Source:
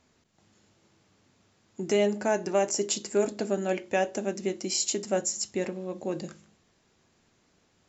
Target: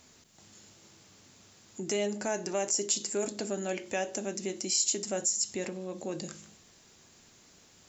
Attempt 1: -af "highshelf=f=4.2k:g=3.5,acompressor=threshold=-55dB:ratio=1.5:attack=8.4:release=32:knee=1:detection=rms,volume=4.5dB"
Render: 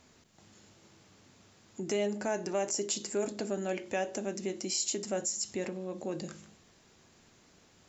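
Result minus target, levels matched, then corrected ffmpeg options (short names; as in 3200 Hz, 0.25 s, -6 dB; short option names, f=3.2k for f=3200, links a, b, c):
8000 Hz band -2.5 dB
-af "highshelf=f=4.2k:g=13.5,acompressor=threshold=-55dB:ratio=1.5:attack=8.4:release=32:knee=1:detection=rms,volume=4.5dB"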